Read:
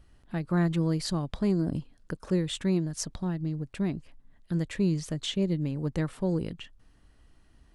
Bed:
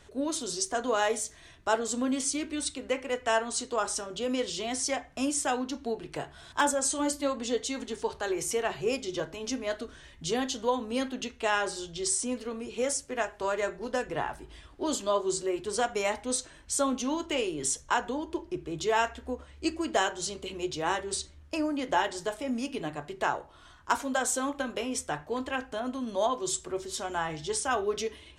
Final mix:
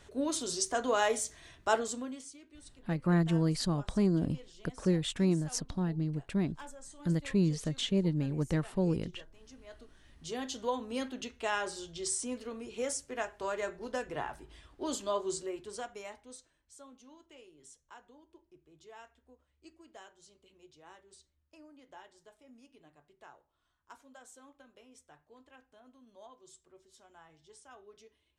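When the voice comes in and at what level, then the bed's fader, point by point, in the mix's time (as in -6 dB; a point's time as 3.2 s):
2.55 s, -1.5 dB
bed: 1.79 s -1.5 dB
2.38 s -22.5 dB
9.51 s -22.5 dB
10.57 s -5.5 dB
15.3 s -5.5 dB
16.74 s -26 dB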